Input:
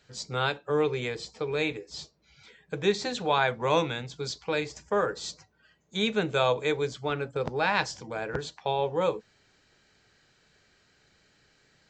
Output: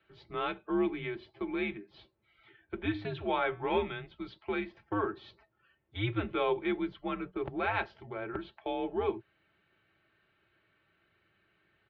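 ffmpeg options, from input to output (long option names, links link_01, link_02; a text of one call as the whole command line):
ffmpeg -i in.wav -filter_complex "[0:a]aecho=1:1:4.2:0.54,asettb=1/sr,asplit=3[link_01][link_02][link_03];[link_01]atrim=end=2.804[link_04];[link_02]atrim=start=2.8:end=3.79,asetpts=PTS-STARTPTS,afade=type=in:duration=0.004:curve=qsin,afade=type=out:start_time=0.986:duration=0.004:curve=qsin,bandreject=frequency=203.6:width_type=h:width=4,bandreject=frequency=407.2:width_type=h:width=4,bandreject=frequency=610.8:width_type=h:width=4,bandreject=frequency=814.4:width_type=h:width=4,bandreject=frequency=1018:width_type=h:width=4,bandreject=frequency=1221.6:width_type=h:width=4,bandreject=frequency=1425.2:width_type=h:width=4,bandreject=frequency=1628.8:width_type=h:width=4,bandreject=frequency=1832.4:width_type=h:width=4,bandreject=frequency=2036:width_type=h:width=4,bandreject=frequency=2239.6:width_type=h:width=4,bandreject=frequency=2443.2:width_type=h:width=4,bandreject=frequency=2646.8:width_type=h:width=4,bandreject=frequency=2850.4:width_type=h:width=4,bandreject=frequency=3054:width_type=h:width=4,bandreject=frequency=3257.6:width_type=h:width=4,bandreject=frequency=3461.2:width_type=h:width=4,bandreject=frequency=3664.8:width_type=h:width=4[link_05];[link_03]atrim=start=3.786[link_06];[link_04][link_05]acrossfade=duration=0.004:curve1=hsin:curve2=qsin[link_07];[link_07][link_06]acrossfade=duration=0.004:curve1=qsin:curve2=hsin,highpass=frequency=170:width_type=q:width=0.5412,highpass=frequency=170:width_type=q:width=1.307,lowpass=frequency=3300:width_type=q:width=0.5176,lowpass=frequency=3300:width_type=q:width=0.7071,lowpass=frequency=3300:width_type=q:width=1.932,afreqshift=-100,volume=-6.5dB" out.wav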